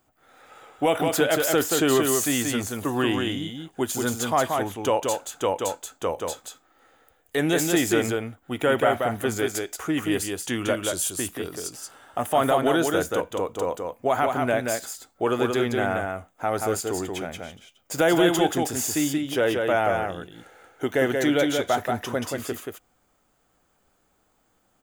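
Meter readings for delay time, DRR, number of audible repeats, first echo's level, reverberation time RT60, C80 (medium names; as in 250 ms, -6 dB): 180 ms, no reverb, 1, -4.0 dB, no reverb, no reverb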